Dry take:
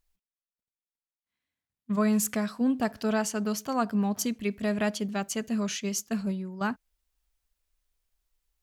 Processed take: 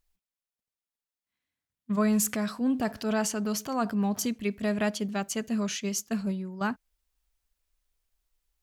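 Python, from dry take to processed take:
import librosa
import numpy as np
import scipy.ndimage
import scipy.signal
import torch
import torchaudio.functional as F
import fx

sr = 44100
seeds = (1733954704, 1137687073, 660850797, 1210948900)

y = fx.transient(x, sr, attack_db=-4, sustain_db=4, at=(2.04, 4.26))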